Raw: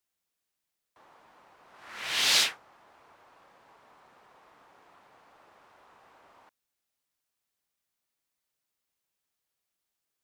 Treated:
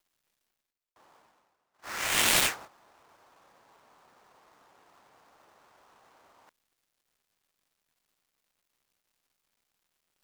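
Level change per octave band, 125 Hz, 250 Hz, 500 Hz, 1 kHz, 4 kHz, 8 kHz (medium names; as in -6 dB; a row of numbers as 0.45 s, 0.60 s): no reading, +9.5 dB, +6.5 dB, +4.5 dB, -3.5 dB, +3.0 dB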